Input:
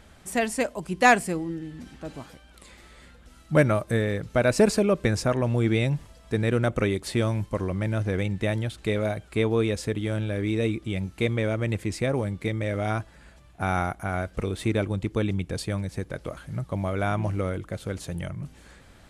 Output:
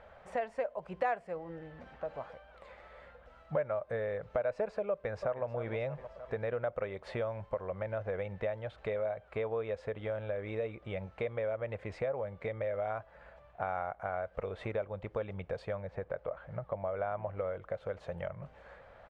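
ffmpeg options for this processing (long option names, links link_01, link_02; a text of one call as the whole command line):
ffmpeg -i in.wav -filter_complex "[0:a]asplit=2[link_01][link_02];[link_02]afade=type=in:start_time=4.91:duration=0.01,afade=type=out:start_time=5.45:duration=0.01,aecho=0:1:310|620|930|1240|1550:0.16788|0.0839402|0.0419701|0.0209851|0.0104925[link_03];[link_01][link_03]amix=inputs=2:normalize=0,asettb=1/sr,asplit=3[link_04][link_05][link_06];[link_04]atrim=end=15.774[link_07];[link_05]atrim=start=15.77:end=17.37,asetpts=PTS-STARTPTS,afade=type=in:duration=0.004:curve=qsin,afade=type=out:start_time=1.596:duration=0.004:curve=qsin,lowpass=frequency=2500:poles=1[link_08];[link_06]atrim=start=17.366[link_09];[link_07][link_08]acrossfade=duration=0.004:curve1=hsin:curve2=qsin[link_10];[link_10][link_09]acrossfade=duration=0.004:curve1=qsin:curve2=hsin,lowpass=1700,lowshelf=frequency=410:width_type=q:width=3:gain=-9.5,acompressor=threshold=-35dB:ratio=3" out.wav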